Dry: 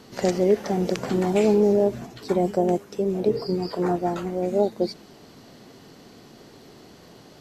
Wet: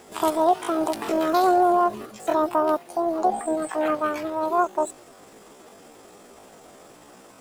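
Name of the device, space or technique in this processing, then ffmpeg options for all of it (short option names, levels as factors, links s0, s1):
chipmunk voice: -af "asetrate=76340,aresample=44100,atempo=0.577676"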